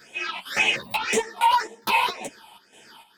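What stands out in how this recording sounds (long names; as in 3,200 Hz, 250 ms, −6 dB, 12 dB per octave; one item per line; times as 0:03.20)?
phaser sweep stages 6, 1.9 Hz, lowest notch 420–1,300 Hz
chopped level 2.2 Hz, depth 65%, duty 65%
a shimmering, thickened sound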